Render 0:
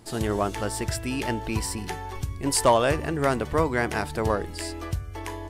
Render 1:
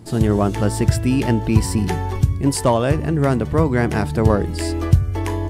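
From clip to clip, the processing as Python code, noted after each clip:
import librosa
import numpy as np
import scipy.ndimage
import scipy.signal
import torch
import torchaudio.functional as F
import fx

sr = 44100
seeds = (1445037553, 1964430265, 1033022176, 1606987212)

y = fx.peak_eq(x, sr, hz=140.0, db=13.0, octaves=2.9)
y = fx.rider(y, sr, range_db=4, speed_s=0.5)
y = F.gain(torch.from_numpy(y), 1.5).numpy()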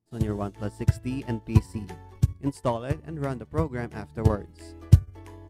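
y = fx.upward_expand(x, sr, threshold_db=-33.0, expansion=2.5)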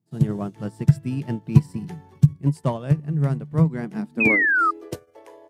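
y = fx.spec_paint(x, sr, seeds[0], shape='fall', start_s=4.2, length_s=0.51, low_hz=1200.0, high_hz=2600.0, level_db=-18.0)
y = fx.filter_sweep_highpass(y, sr, from_hz=150.0, to_hz=530.0, start_s=3.59, end_s=5.16, q=6.8)
y = F.gain(torch.from_numpy(y), -1.0).numpy()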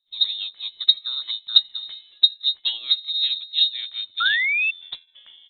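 y = fx.freq_invert(x, sr, carrier_hz=3900)
y = F.gain(torch.from_numpy(y), -2.5).numpy()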